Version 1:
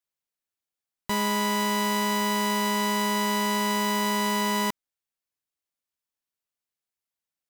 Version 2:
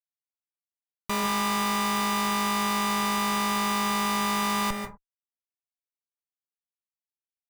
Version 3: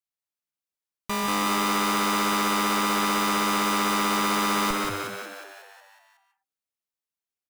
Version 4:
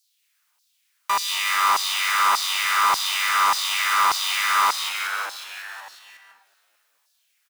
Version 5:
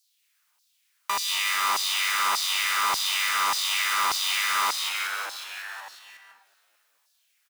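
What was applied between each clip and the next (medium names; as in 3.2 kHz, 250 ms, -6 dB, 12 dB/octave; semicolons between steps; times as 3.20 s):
low-pass 6.8 kHz 12 dB/octave; Schmitt trigger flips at -34.5 dBFS; on a send at -5 dB: reverberation, pre-delay 134 ms; on the sum: trim +2 dB
frequency-shifting echo 183 ms, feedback 58%, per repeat +96 Hz, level -3.5 dB
power-law waveshaper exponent 0.7; LFO high-pass saw down 1.7 Hz 860–5000 Hz; frequency-shifting echo 219 ms, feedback 58%, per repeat -62 Hz, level -20.5 dB
dynamic bell 1.1 kHz, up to -6 dB, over -30 dBFS, Q 0.91; trim -1 dB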